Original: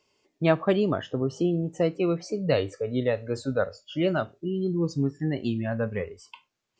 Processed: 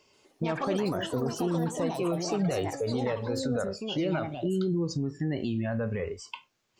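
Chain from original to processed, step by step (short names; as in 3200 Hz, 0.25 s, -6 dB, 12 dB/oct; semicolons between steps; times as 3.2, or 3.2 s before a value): compressor, threshold -25 dBFS, peak gain reduction 9.5 dB; limiter -28 dBFS, peak gain reduction 11.5 dB; echoes that change speed 0.132 s, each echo +6 st, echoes 3, each echo -6 dB; gain +6 dB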